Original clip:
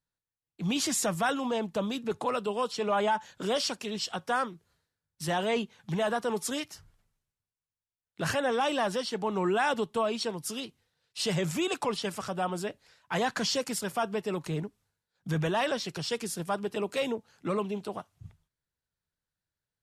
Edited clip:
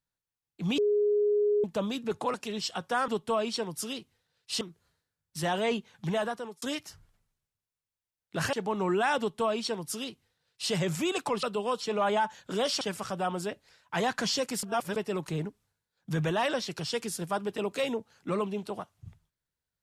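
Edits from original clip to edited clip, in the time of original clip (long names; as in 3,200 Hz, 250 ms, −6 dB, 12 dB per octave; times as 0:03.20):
0:00.78–0:01.64: beep over 415 Hz −22 dBFS
0:02.34–0:03.72: move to 0:11.99
0:05.99–0:06.47: fade out
0:08.38–0:09.09: remove
0:09.75–0:11.28: duplicate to 0:04.46
0:13.81–0:14.14: reverse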